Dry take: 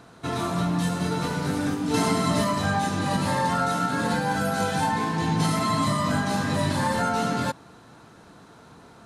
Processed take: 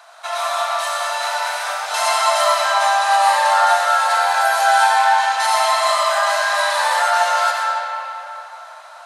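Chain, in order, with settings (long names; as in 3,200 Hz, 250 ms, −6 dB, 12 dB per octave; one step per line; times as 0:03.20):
Butterworth high-pass 600 Hz 72 dB per octave
convolution reverb RT60 3.3 s, pre-delay 40 ms, DRR −2.5 dB
level +7 dB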